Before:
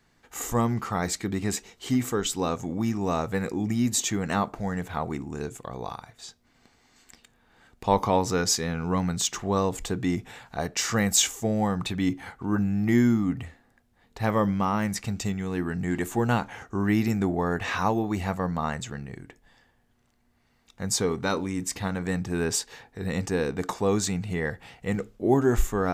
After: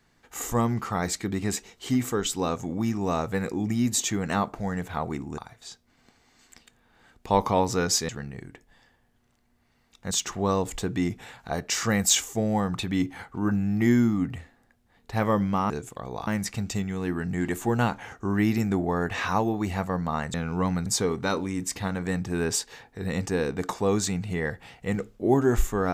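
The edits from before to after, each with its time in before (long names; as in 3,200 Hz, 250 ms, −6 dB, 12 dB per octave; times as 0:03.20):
0:05.38–0:05.95: move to 0:14.77
0:08.66–0:09.18: swap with 0:18.84–0:20.86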